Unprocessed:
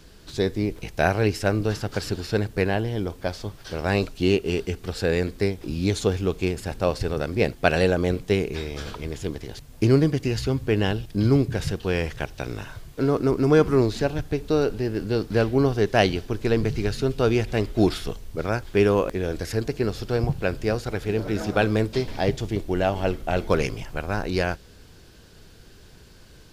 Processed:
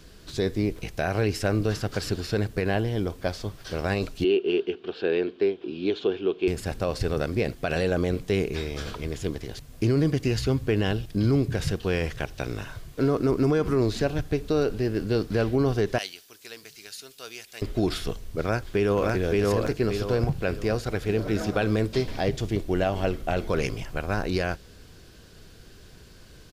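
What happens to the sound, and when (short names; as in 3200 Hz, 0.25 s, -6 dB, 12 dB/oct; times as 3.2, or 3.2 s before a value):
4.24–6.48 speaker cabinet 340–3300 Hz, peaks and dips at 370 Hz +9 dB, 540 Hz -6 dB, 800 Hz -3 dB, 1200 Hz -5 dB, 2000 Hz -10 dB, 3100 Hz +5 dB
15.98–17.62 differentiator
18.4–19.15 echo throw 0.57 s, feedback 30%, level -1 dB
whole clip: notch 870 Hz, Q 12; limiter -14.5 dBFS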